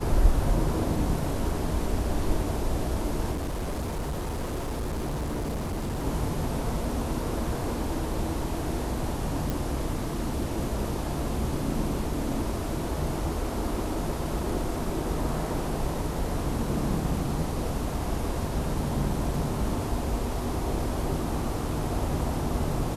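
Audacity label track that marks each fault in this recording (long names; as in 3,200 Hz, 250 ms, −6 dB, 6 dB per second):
3.310000	6.050000	clipping −27 dBFS
9.500000	9.500000	click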